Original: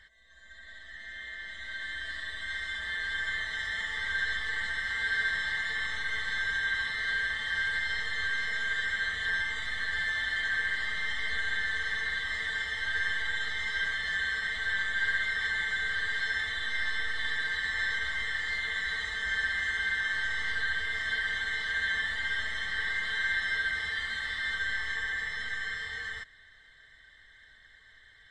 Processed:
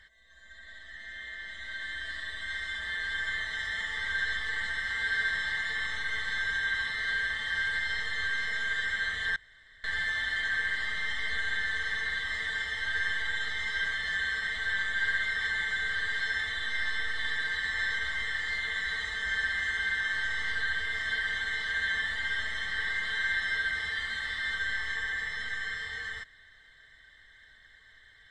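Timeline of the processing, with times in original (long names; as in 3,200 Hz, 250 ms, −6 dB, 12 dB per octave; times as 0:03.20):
0:09.36–0:09.84: fill with room tone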